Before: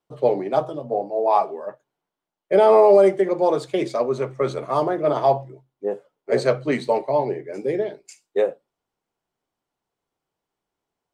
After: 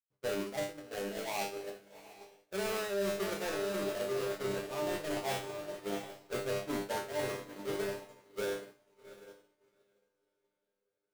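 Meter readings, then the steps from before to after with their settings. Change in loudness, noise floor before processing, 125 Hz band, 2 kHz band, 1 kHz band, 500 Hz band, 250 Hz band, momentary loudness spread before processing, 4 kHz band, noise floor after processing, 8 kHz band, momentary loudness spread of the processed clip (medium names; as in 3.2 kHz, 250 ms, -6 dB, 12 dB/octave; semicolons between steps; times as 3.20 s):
-16.0 dB, -85 dBFS, -13.0 dB, -5.5 dB, -18.5 dB, -17.0 dB, -13.0 dB, 15 LU, -2.5 dB, -85 dBFS, no reading, 18 LU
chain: square wave that keeps the level; bass shelf 250 Hz +6 dB; feedback comb 100 Hz, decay 0.7 s, harmonics all, mix 90%; echo that smears into a reverb 767 ms, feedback 53%, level -8 dB; expander -26 dBFS; reverse; compression 6:1, threshold -29 dBFS, peak gain reduction 16.5 dB; reverse; trim -3 dB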